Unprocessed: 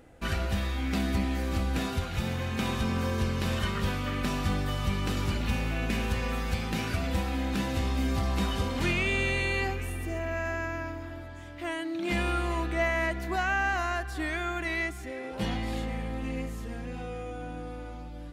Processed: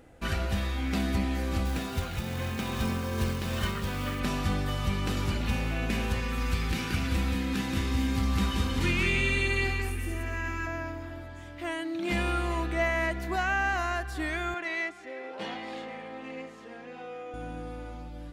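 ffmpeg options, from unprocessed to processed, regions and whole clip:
-filter_complex "[0:a]asettb=1/sr,asplit=3[a][b][c];[a]atrim=end=1.654[d];[b]atrim=start=1.65:end=4.2,asetpts=PTS-STARTPTS,afade=t=in:d=0.004:c=qsin,afade=t=out:st=2.546:d=0.004:c=qsin,tremolo=f=2.5:d=0.34,acrusher=bits=4:mode=log:mix=0:aa=0.000001[e];[c]atrim=start=4.196[f];[d][e]acrossfade=d=0.004:c1=hsin:c2=qsin[g];[g][f]acrossfade=d=0.004:c1=qsin:c2=hsin,asettb=1/sr,asplit=3[h][i][j];[h]atrim=end=6.204[k];[i]atrim=start=6.2:end=10.67,asetpts=PTS-STARTPTS,afade=t=in:d=0.004:c=qsin,afade=t=out:st=4.466:d=0.004:c=qsin,equalizer=f=650:t=o:w=0.64:g=-10.5,aecho=1:1:178:0.631,atrim=end_sample=197127[l];[j]atrim=start=10.666[m];[k][l]acrossfade=d=0.004:c1=hsin:c2=qsin[n];[n][m]acrossfade=d=0.004:c1=qsin:c2=hsin,asettb=1/sr,asplit=3[o][p][q];[o]atrim=end=14.544[r];[p]atrim=start=14.54:end=17.34,asetpts=PTS-STARTPTS,afade=t=in:d=0.004:c=qsin,afade=t=out:st=2.796:d=0.004:c=qsin,highpass=380,adynamicsmooth=sensitivity=3:basefreq=4.7k[s];[q]atrim=start=17.336[t];[r][s]acrossfade=d=0.004:c1=hsin:c2=qsin[u];[u][t]acrossfade=d=0.004:c1=qsin:c2=hsin"

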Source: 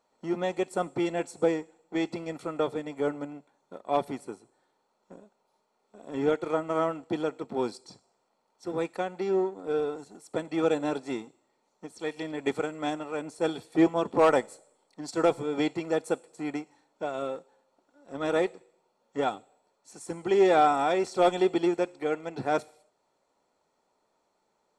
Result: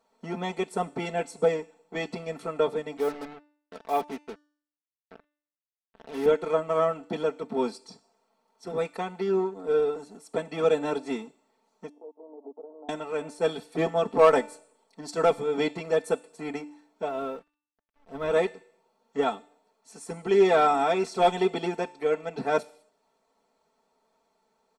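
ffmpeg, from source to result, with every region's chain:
-filter_complex "[0:a]asettb=1/sr,asplit=3[a][b][c];[a]atrim=end=2.974[d];[b]atrim=start=2.97:end=6.26,asetpts=PTS-STARTPTS,afade=t=in:d=0.004:c=qsin,afade=t=out:st=3.286:d=0.004:c=qsin,highpass=120,lowpass=3.3k,lowshelf=f=230:g=-10,acrusher=bits=6:mix=0:aa=0.5[e];[c]atrim=start=6.256[f];[d][e]acrossfade=d=0.004:c1=hsin:c2=qsin[g];[g][f]acrossfade=d=0.004:c1=qsin:c2=hsin,asettb=1/sr,asplit=3[h][i][j];[h]atrim=end=11.894[k];[i]atrim=start=11.89:end=12.89,asetpts=PTS-STARTPTS,afade=t=in:d=0.004:c=qsin,afade=t=out:st=0.996:d=0.004:c=qsin,acompressor=threshold=-44dB:ratio=4:attack=3.2:release=140:knee=1:detection=peak,aeval=exprs='val(0)*gte(abs(val(0)),0.00335)':c=same,asuperpass=centerf=490:order=12:qfactor=0.71[l];[j]atrim=start=12.886[m];[k][l]acrossfade=d=0.004:c1=hsin:c2=qsin[n];[n][m]acrossfade=d=0.004:c1=qsin:c2=hsin,asettb=1/sr,asplit=3[o][p][q];[o]atrim=end=17.084[r];[p]atrim=start=17.08:end=18.31,asetpts=PTS-STARTPTS,afade=t=in:d=0.004:c=qsin,afade=t=out:st=1.226:d=0.004:c=qsin,lowpass=f=2.5k:p=1,aeval=exprs='sgn(val(0))*max(abs(val(0))-0.00126,0)':c=same,asubboost=boost=7.5:cutoff=110[s];[q]atrim=start=18.306[t];[r][s]acrossfade=d=0.004:c1=hsin:c2=qsin[u];[u][t]acrossfade=d=0.004:c1=qsin:c2=hsin,equalizer=f=7.2k:t=o:w=0.32:g=-3.5,aecho=1:1:4.5:0.8,bandreject=f=295.9:t=h:w=4,bandreject=f=591.8:t=h:w=4,bandreject=f=887.7:t=h:w=4,bandreject=f=1.1836k:t=h:w=4,bandreject=f=1.4795k:t=h:w=4,bandreject=f=1.7754k:t=h:w=4,bandreject=f=2.0713k:t=h:w=4,bandreject=f=2.3672k:t=h:w=4,bandreject=f=2.6631k:t=h:w=4,bandreject=f=2.959k:t=h:w=4,bandreject=f=3.2549k:t=h:w=4,bandreject=f=3.5508k:t=h:w=4,bandreject=f=3.8467k:t=h:w=4,bandreject=f=4.1426k:t=h:w=4,bandreject=f=4.4385k:t=h:w=4,bandreject=f=4.7344k:t=h:w=4,bandreject=f=5.0303k:t=h:w=4,bandreject=f=5.3262k:t=h:w=4,bandreject=f=5.6221k:t=h:w=4,bandreject=f=5.918k:t=h:w=4,bandreject=f=6.2139k:t=h:w=4,bandreject=f=6.5098k:t=h:w=4,bandreject=f=6.8057k:t=h:w=4,bandreject=f=7.1016k:t=h:w=4,bandreject=f=7.3975k:t=h:w=4,bandreject=f=7.6934k:t=h:w=4,bandreject=f=7.9893k:t=h:w=4,bandreject=f=8.2852k:t=h:w=4,bandreject=f=8.5811k:t=h:w=4,bandreject=f=8.877k:t=h:w=4,bandreject=f=9.1729k:t=h:w=4,bandreject=f=9.4688k:t=h:w=4"

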